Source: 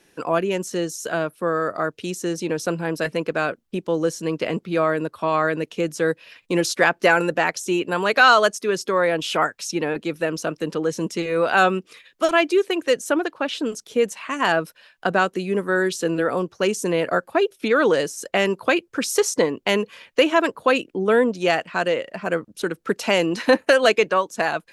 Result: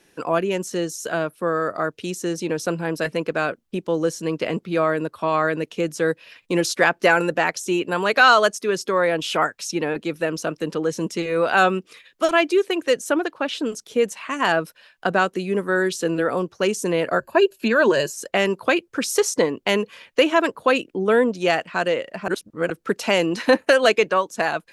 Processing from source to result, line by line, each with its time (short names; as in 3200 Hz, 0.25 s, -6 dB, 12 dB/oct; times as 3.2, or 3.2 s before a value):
17.19–18.13 ripple EQ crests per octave 1.4, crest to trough 11 dB
22.28–22.7 reverse